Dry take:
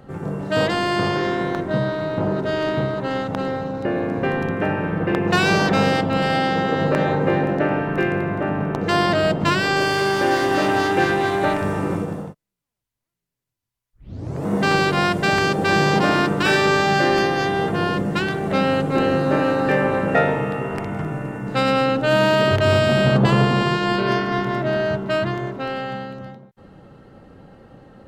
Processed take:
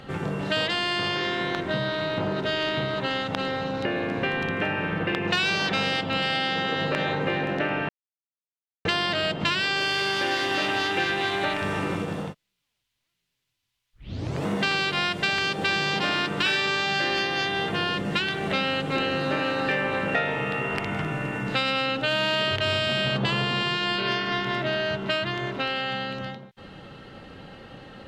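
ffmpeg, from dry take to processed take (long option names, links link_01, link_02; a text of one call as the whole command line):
ffmpeg -i in.wav -filter_complex "[0:a]asplit=3[link_01][link_02][link_03];[link_01]atrim=end=7.89,asetpts=PTS-STARTPTS,afade=type=out:start_time=7.886:duration=0.004:curve=hsin[link_04];[link_02]atrim=start=7.89:end=8.85,asetpts=PTS-STARTPTS,volume=0[link_05];[link_03]atrim=start=8.85,asetpts=PTS-STARTPTS,afade=type=in:duration=0.004:curve=hsin[link_06];[link_04][link_05][link_06]concat=n=3:v=0:a=1,equalizer=frequency=3200:width_type=o:width=1.9:gain=15,acompressor=threshold=-26dB:ratio=3" out.wav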